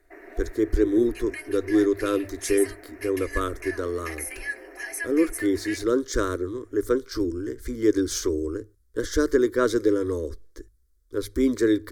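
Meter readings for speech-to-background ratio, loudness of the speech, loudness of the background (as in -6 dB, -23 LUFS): 10.5 dB, -25.5 LUFS, -36.0 LUFS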